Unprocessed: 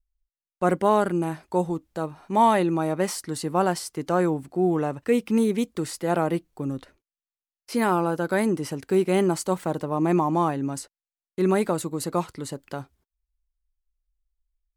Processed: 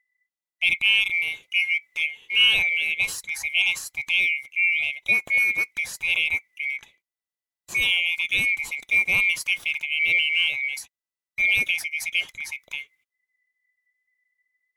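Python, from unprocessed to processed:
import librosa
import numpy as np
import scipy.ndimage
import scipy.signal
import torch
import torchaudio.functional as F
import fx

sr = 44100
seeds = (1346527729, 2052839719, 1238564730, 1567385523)

y = fx.band_swap(x, sr, width_hz=2000)
y = fx.comb(y, sr, ms=7.0, depth=0.85, at=(1.61, 2.17))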